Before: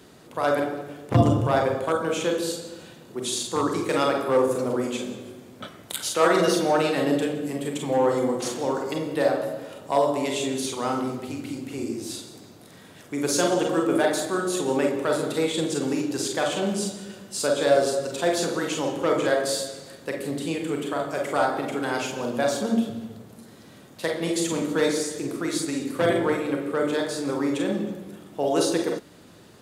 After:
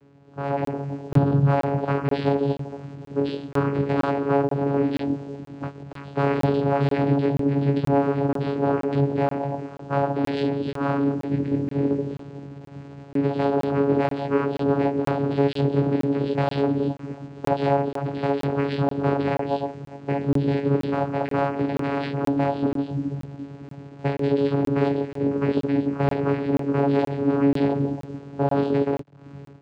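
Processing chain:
downsampling to 8,000 Hz
low-pass that shuts in the quiet parts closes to 850 Hz, open at −19.5 dBFS
reverb reduction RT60 0.61 s
downward compressor 2.5 to 1, threshold −26 dBFS, peak gain reduction 9.5 dB
bit reduction 9 bits
asymmetric clip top −30 dBFS, bottom −15 dBFS
automatic gain control gain up to 13.5 dB
chorus effect 0.47 Hz, delay 17 ms, depth 3.9 ms
channel vocoder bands 8, saw 140 Hz
regular buffer underruns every 0.48 s, samples 1,024, zero, from 0:00.65

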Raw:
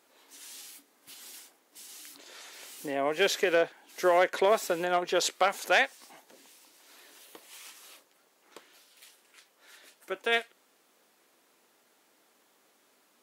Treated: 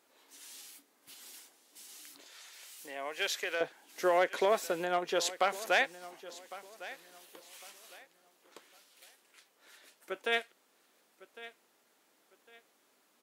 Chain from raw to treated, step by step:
0:02.27–0:03.61: high-pass filter 1,300 Hz 6 dB per octave
repeating echo 1,105 ms, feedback 28%, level −17 dB
level −4 dB

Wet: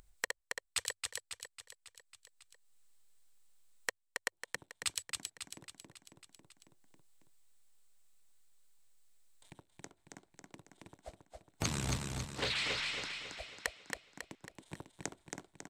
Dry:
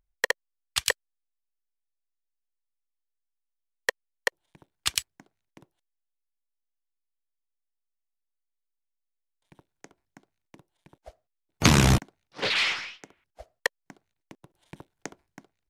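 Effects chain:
thirty-one-band graphic EQ 100 Hz +5 dB, 4,000 Hz +4 dB, 8,000 Hz +11 dB
downward compressor 12 to 1, threshold −30 dBFS, peak gain reduction 18.5 dB
on a send: repeating echo 274 ms, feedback 49%, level −4 dB
on the sum: upward compression, threshold −46 dBFS
level −3 dB

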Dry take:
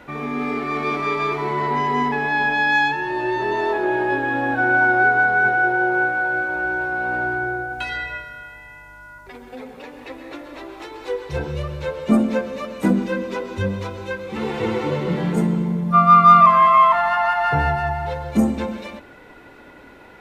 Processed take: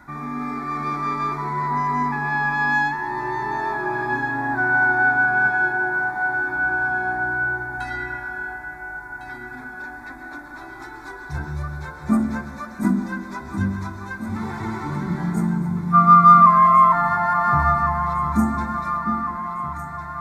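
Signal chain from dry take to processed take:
phaser with its sweep stopped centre 1,200 Hz, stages 4
delay that swaps between a low-pass and a high-pass 702 ms, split 940 Hz, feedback 76%, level −8 dB

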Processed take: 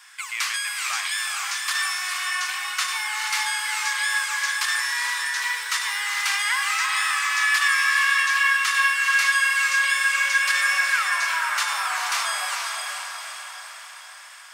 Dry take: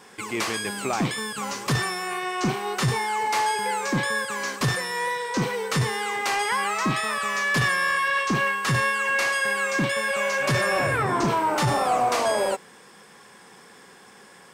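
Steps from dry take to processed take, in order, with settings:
0:05.39–0:07.04: centre clipping without the shift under −45 dBFS
high-pass filter 1,300 Hz 24 dB per octave
feedback delay with all-pass diffusion 451 ms, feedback 55%, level −3 dB
level +3.5 dB

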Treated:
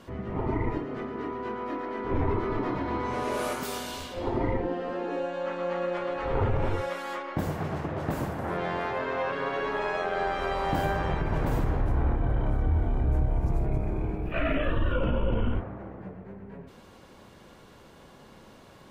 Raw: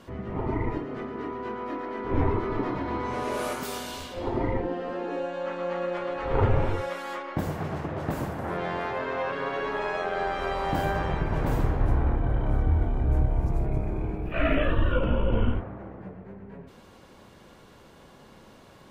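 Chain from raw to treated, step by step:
brickwall limiter −17 dBFS, peak gain reduction 6 dB

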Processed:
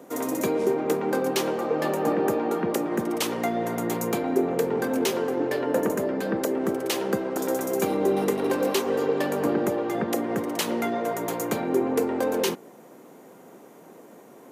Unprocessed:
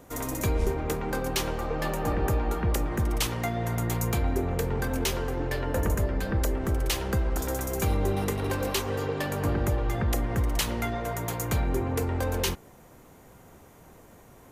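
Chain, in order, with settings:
high-pass filter 180 Hz 24 dB per octave
parametric band 380 Hz +8 dB 2.2 octaves

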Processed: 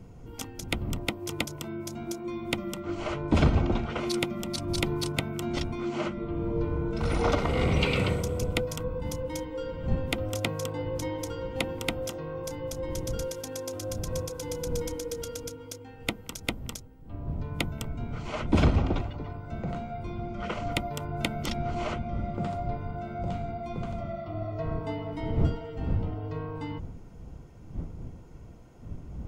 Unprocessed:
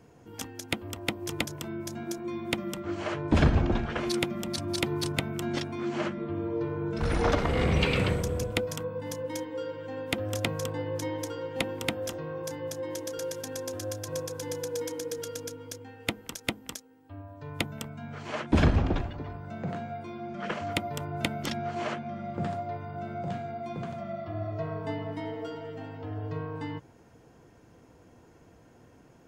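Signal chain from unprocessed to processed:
wind on the microphone 120 Hz −37 dBFS
Butterworth band-reject 1,700 Hz, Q 6.2

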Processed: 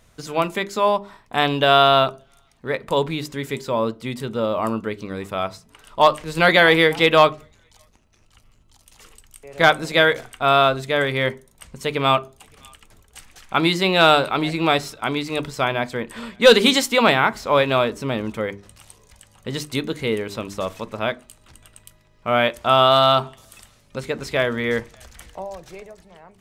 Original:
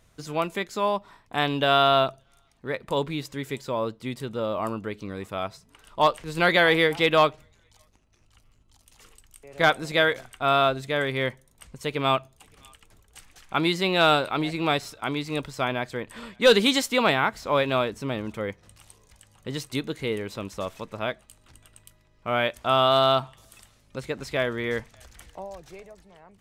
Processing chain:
mains-hum notches 50/100/150/200/250/300/350/400 Hz
on a send: convolution reverb RT60 0.35 s, pre-delay 3 ms, DRR 16 dB
on the sum: level +5.5 dB

